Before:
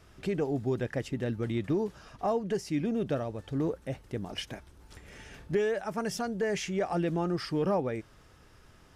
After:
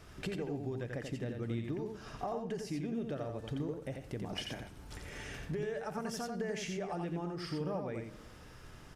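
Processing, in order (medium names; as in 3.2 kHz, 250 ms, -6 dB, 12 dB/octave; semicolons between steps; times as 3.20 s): compression 6:1, threshold -40 dBFS, peak gain reduction 15.5 dB; delay 87 ms -5 dB; reverberation RT60 1.4 s, pre-delay 7 ms, DRR 13.5 dB; trim +2.5 dB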